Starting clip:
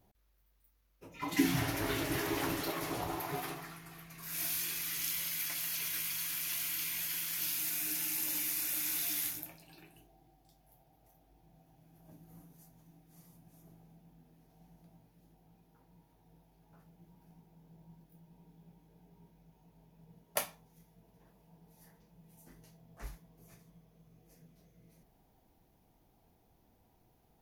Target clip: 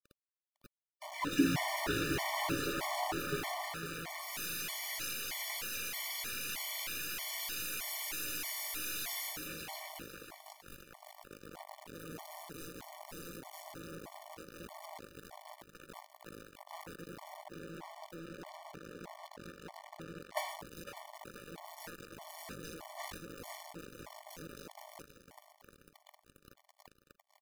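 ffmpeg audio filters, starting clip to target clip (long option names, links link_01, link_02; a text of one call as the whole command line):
ffmpeg -i in.wav -filter_complex "[0:a]asettb=1/sr,asplit=3[link_01][link_02][link_03];[link_01]atrim=end=17.374[link_04];[link_02]atrim=start=17.37:end=20.49,asetpts=PTS-STARTPTS,afade=type=in:duration=0.004:curve=qsin,afade=type=out:start_time=3.116:duration=0.004:curve=qsin,highshelf=frequency=5900:gain=-11[link_05];[link_03]atrim=start=20.486[link_06];[link_04][link_05]acrossfade=duration=0.004:curve1=hsin:curve2=qsin[link_07];[link_07][link_06]acrossfade=duration=0.004:curve1=qsin:curve2=hsin,acrusher=bits=7:dc=4:mix=0:aa=0.000001,asplit=2[link_08][link_09];[link_09]highpass=frequency=720:poles=1,volume=32dB,asoftclip=type=tanh:threshold=-37dB[link_10];[link_08][link_10]amix=inputs=2:normalize=0,lowpass=frequency=4300:poles=1,volume=-6dB,aecho=1:1:504|1008|1512|2016:0.266|0.109|0.0447|0.0183,afftfilt=real='re*gt(sin(2*PI*1.6*pts/sr)*(1-2*mod(floor(b*sr/1024/590),2)),0)':imag='im*gt(sin(2*PI*1.6*pts/sr)*(1-2*mod(floor(b*sr/1024/590),2)),0)':win_size=1024:overlap=0.75,volume=6dB" out.wav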